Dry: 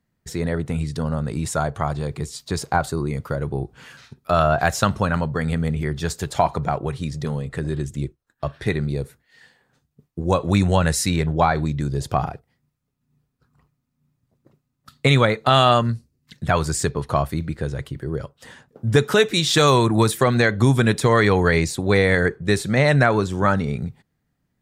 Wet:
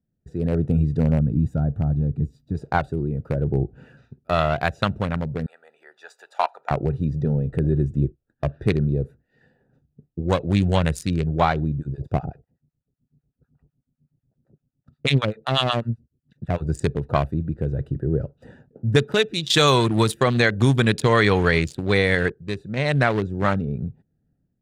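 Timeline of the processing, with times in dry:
0:01.20–0:02.55: gain on a spectral selection 320–12,000 Hz −10 dB
0:05.46–0:06.71: high-pass filter 840 Hz 24 dB per octave
0:11.78–0:16.69: two-band tremolo in antiphase 8 Hz, depth 100%, crossover 830 Hz
0:19.50–0:22.32: clip gain +6.5 dB
whole clip: adaptive Wiener filter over 41 samples; dynamic equaliser 3,100 Hz, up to +6 dB, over −39 dBFS, Q 1.3; automatic gain control gain up to 9.5 dB; level −3.5 dB

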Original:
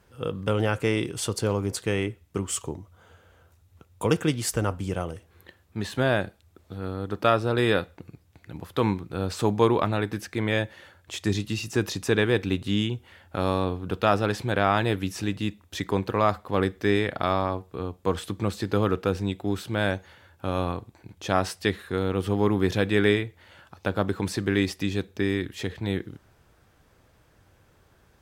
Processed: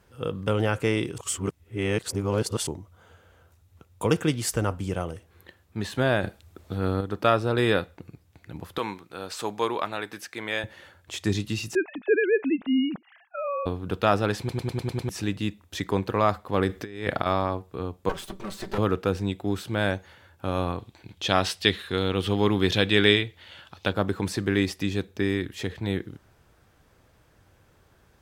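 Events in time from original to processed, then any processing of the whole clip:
0:01.18–0:02.67: reverse
0:06.23–0:07.01: clip gain +6.5 dB
0:08.78–0:10.64: high-pass filter 860 Hz 6 dB per octave
0:11.75–0:13.66: three sine waves on the formant tracks
0:14.39: stutter in place 0.10 s, 7 plays
0:16.69–0:17.26: compressor whose output falls as the input rises −29 dBFS, ratio −0.5
0:18.09–0:18.78: lower of the sound and its delayed copy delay 5.2 ms
0:20.79–0:23.93: parametric band 3,400 Hz +11 dB 1.1 octaves

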